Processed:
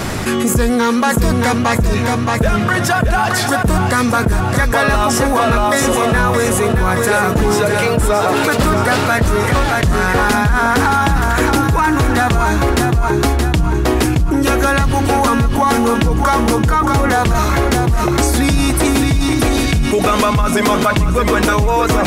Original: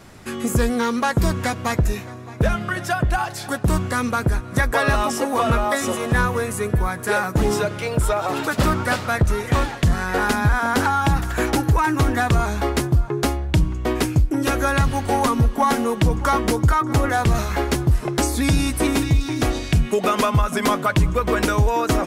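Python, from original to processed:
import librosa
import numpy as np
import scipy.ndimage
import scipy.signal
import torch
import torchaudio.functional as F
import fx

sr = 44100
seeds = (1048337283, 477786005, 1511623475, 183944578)

y = fx.lowpass(x, sr, hz=6500.0, slope=12, at=(1.52, 2.39))
y = fx.echo_feedback(y, sr, ms=623, feedback_pct=50, wet_db=-7)
y = fx.env_flatten(y, sr, amount_pct=70)
y = F.gain(torch.from_numpy(y), 1.5).numpy()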